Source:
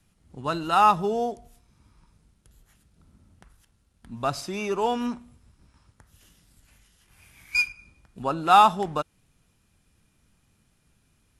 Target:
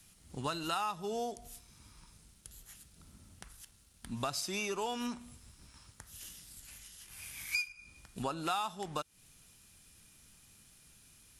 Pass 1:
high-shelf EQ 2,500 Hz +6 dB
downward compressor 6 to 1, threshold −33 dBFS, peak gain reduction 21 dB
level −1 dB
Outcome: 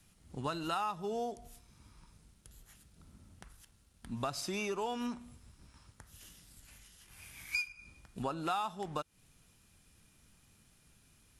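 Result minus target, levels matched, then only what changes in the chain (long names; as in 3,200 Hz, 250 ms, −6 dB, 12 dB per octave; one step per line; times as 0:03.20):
4,000 Hz band −4.0 dB
change: high-shelf EQ 2,500 Hz +14.5 dB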